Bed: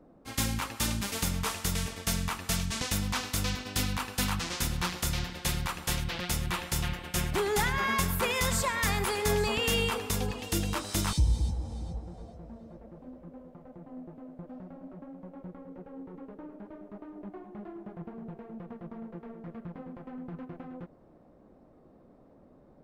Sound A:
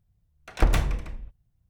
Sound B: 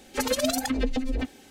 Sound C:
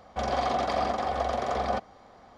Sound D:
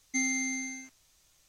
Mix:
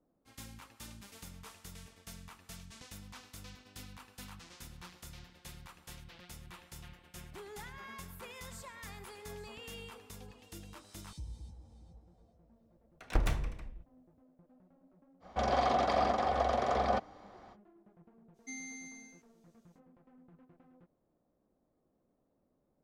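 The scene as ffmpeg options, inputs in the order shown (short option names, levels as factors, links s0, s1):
-filter_complex "[0:a]volume=0.106[s0];[3:a]highshelf=f=5200:g=-3.5[s1];[1:a]atrim=end=1.69,asetpts=PTS-STARTPTS,volume=0.355,afade=t=in:d=0.004:c=hsin,afade=t=out:st=1.686:d=0.004:c=hsin,adelay=12530[s2];[s1]atrim=end=2.37,asetpts=PTS-STARTPTS,volume=0.794,afade=t=in:d=0.05,afade=t=out:st=2.32:d=0.05,adelay=15200[s3];[4:a]atrim=end=1.48,asetpts=PTS-STARTPTS,volume=0.178,afade=t=in:d=0.05,afade=t=out:st=1.43:d=0.05,adelay=18330[s4];[s0][s2][s3][s4]amix=inputs=4:normalize=0"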